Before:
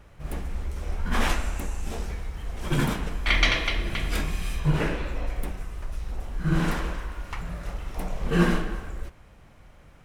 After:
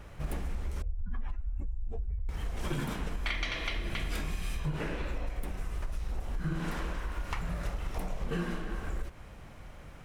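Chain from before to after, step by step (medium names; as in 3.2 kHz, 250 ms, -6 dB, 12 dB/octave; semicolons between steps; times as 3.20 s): 0.82–2.29 s: spectral contrast enhancement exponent 2.1; compression 12:1, threshold -33 dBFS, peak gain reduction 19 dB; trim +3.5 dB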